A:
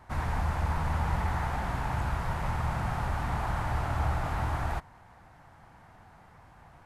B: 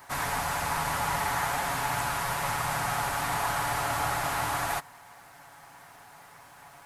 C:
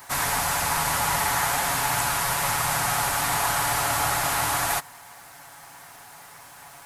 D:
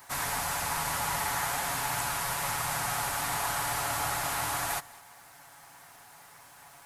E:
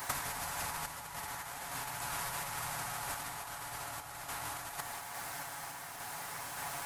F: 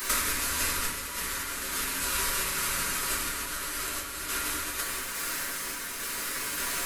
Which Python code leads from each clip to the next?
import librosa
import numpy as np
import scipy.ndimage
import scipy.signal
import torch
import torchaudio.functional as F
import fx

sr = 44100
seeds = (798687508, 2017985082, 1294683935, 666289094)

y1 = fx.riaa(x, sr, side='recording')
y1 = y1 + 0.47 * np.pad(y1, (int(7.1 * sr / 1000.0), 0))[:len(y1)]
y1 = y1 * 10.0 ** (4.5 / 20.0)
y2 = fx.high_shelf(y1, sr, hz=3500.0, db=8.5)
y2 = y2 * 10.0 ** (3.0 / 20.0)
y3 = y2 + 10.0 ** (-22.5 / 20.0) * np.pad(y2, (int(201 * sr / 1000.0), 0))[:len(y2)]
y3 = y3 * 10.0 ** (-7.0 / 20.0)
y4 = fx.over_compress(y3, sr, threshold_db=-38.0, ratio=-0.5)
y4 = fx.tremolo_random(y4, sr, seeds[0], hz=3.5, depth_pct=55)
y4 = y4 * 10.0 ** (3.0 / 20.0)
y5 = fx.fixed_phaser(y4, sr, hz=320.0, stages=4)
y5 = fx.room_shoebox(y5, sr, seeds[1], volume_m3=87.0, walls='mixed', distance_m=1.2)
y5 = y5 * 10.0 ** (8.0 / 20.0)